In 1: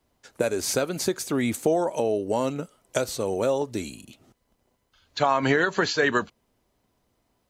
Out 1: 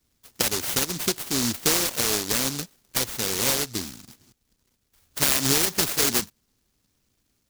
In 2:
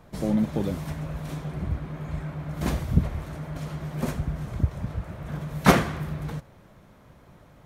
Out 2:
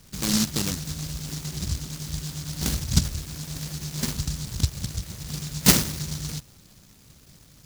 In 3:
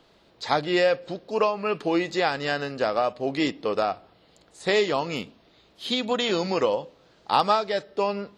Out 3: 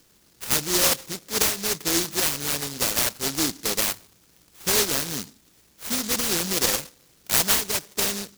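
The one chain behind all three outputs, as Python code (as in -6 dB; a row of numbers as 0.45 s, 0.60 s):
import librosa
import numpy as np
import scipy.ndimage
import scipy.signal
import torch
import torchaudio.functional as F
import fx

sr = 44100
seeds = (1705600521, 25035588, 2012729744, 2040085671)

y = fx.noise_mod_delay(x, sr, seeds[0], noise_hz=5300.0, depth_ms=0.48)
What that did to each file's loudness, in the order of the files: +2.5 LU, +2.0 LU, +2.5 LU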